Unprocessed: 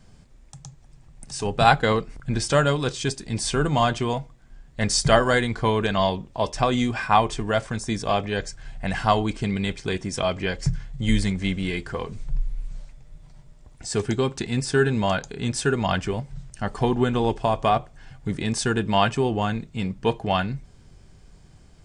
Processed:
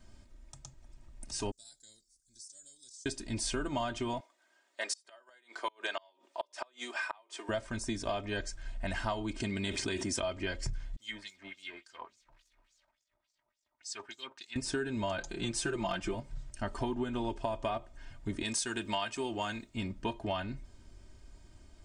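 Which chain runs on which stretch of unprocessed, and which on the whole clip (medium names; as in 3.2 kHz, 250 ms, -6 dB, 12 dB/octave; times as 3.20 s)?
1.51–3.06 s: inverse Chebyshev high-pass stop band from 2.9 kHz + compression 4:1, threshold -44 dBFS
4.20–7.49 s: Bessel high-pass 600 Hz, order 6 + inverted gate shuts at -14 dBFS, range -34 dB
9.40–10.20 s: high-pass 89 Hz + treble shelf 6.1 kHz +5 dB + level flattener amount 70%
10.96–14.56 s: companding laws mixed up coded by A + LFO band-pass sine 3.5 Hz 860–6700 Hz
15.18–16.15 s: comb 5.8 ms, depth 93% + hard clipper -11.5 dBFS
18.43–19.75 s: tilt EQ +2.5 dB/octave + tape noise reduction on one side only decoder only
whole clip: comb 3.2 ms, depth 73%; compression 6:1, threshold -24 dBFS; trim -7 dB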